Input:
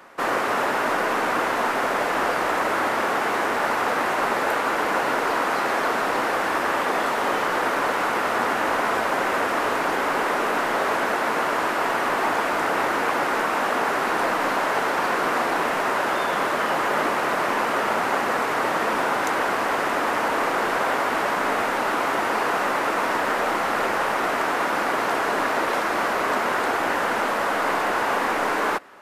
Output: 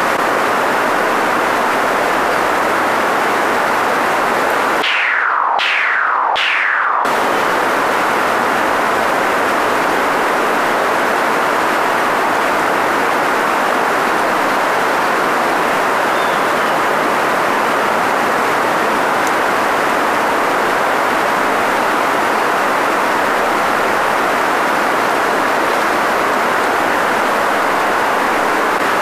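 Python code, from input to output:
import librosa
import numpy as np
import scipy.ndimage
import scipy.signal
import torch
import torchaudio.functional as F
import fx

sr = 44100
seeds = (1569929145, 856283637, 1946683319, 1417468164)

y = fx.filter_lfo_bandpass(x, sr, shape='saw_down', hz=1.3, low_hz=820.0, high_hz=3400.0, q=4.2, at=(4.82, 7.05))
y = fx.env_flatten(y, sr, amount_pct=100)
y = y * librosa.db_to_amplitude(6.0)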